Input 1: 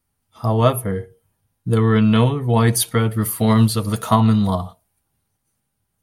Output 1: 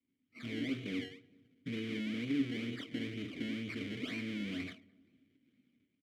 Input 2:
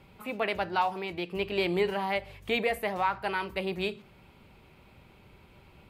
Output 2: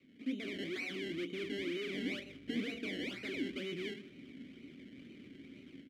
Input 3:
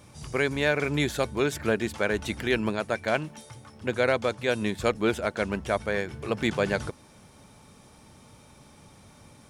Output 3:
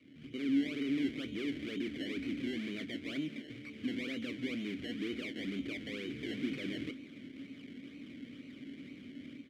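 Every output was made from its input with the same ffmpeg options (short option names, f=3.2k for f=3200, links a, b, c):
-filter_complex "[0:a]lowshelf=f=130:g=-5.5,acrossover=split=780|1500[a][b][c];[c]aeval=exprs='sgn(val(0))*max(abs(val(0))-0.0211,0)':c=same[d];[a][b][d]amix=inputs=3:normalize=0,acompressor=threshold=-22dB:ratio=6,alimiter=level_in=0.5dB:limit=-24dB:level=0:latency=1:release=12,volume=-0.5dB,dynaudnorm=f=360:g=3:m=11dB,aresample=11025,asoftclip=type=tanh:threshold=-30dB,aresample=44100,acrusher=samples=25:mix=1:aa=0.000001:lfo=1:lforange=25:lforate=2.1,asplit=3[e][f][g];[e]bandpass=f=270:t=q:w=8,volume=0dB[h];[f]bandpass=f=2.29k:t=q:w=8,volume=-6dB[i];[g]bandpass=f=3.01k:t=q:w=8,volume=-9dB[j];[h][i][j]amix=inputs=3:normalize=0,adynamicequalizer=threshold=0.00112:dfrequency=210:dqfactor=1.7:tfrequency=210:tqfactor=1.7:attack=5:release=100:ratio=0.375:range=2:mode=cutabove:tftype=bell,asplit=2[k][l];[l]adelay=25,volume=-14dB[m];[k][m]amix=inputs=2:normalize=0,asplit=2[n][o];[o]adelay=212,lowpass=f=1.1k:p=1,volume=-23dB,asplit=2[p][q];[q]adelay=212,lowpass=f=1.1k:p=1,volume=0.48,asplit=2[r][s];[s]adelay=212,lowpass=f=1.1k:p=1,volume=0.48[t];[n][p][r][t]amix=inputs=4:normalize=0,volume=8.5dB"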